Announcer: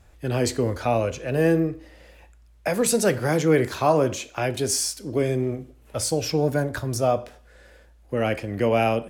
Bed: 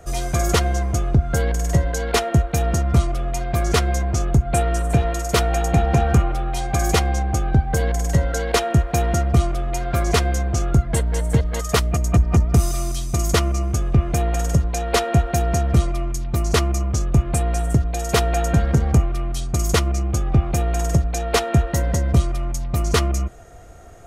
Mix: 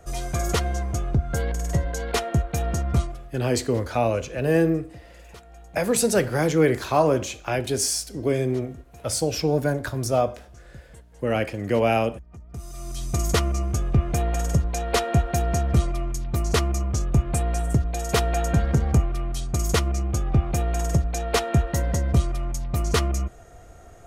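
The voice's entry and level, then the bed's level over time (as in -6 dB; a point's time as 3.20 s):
3.10 s, 0.0 dB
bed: 3.00 s -5.5 dB
3.44 s -28 dB
12.38 s -28 dB
13.06 s -3.5 dB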